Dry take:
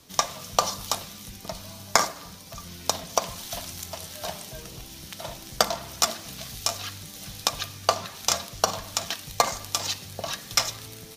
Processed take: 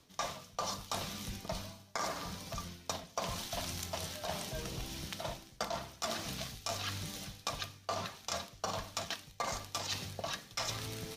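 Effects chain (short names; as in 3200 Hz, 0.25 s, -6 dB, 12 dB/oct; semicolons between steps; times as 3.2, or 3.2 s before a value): high shelf 7400 Hz -9.5 dB; reverse; compressor 16:1, threshold -36 dBFS, peak gain reduction 23.5 dB; reverse; gain +1.5 dB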